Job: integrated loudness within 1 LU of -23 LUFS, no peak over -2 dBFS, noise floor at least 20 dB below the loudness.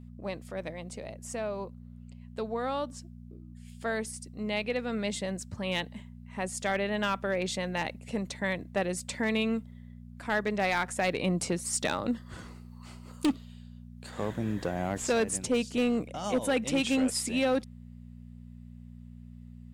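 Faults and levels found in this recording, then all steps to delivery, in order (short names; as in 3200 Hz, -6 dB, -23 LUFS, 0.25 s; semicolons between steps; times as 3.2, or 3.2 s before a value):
clipped 0.4%; flat tops at -20.5 dBFS; hum 60 Hz; harmonics up to 240 Hz; hum level -44 dBFS; loudness -31.5 LUFS; peak -20.5 dBFS; loudness target -23.0 LUFS
-> clip repair -20.5 dBFS; de-hum 60 Hz, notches 4; gain +8.5 dB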